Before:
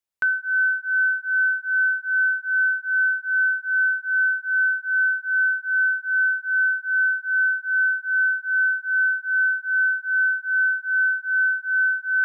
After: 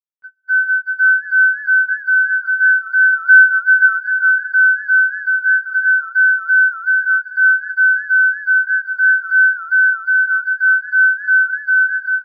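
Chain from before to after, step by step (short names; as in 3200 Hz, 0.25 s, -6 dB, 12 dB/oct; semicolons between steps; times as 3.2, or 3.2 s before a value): flange 0.52 Hz, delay 8.1 ms, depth 2.1 ms, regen -7%; AGC gain up to 15 dB; air absorption 160 m; gate -18 dBFS, range -35 dB; in parallel at -0.5 dB: limiter -8 dBFS, peak gain reduction 4 dB; 3.12–3.93 on the sum: dynamic EQ 1400 Hz, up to +6 dB, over -14 dBFS, Q 1.1; on a send: feedback echo 0.753 s, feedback 43%, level -15 dB; on the sum: warbling echo 0.527 s, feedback 49%, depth 216 cents, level -18.5 dB; gain -6 dB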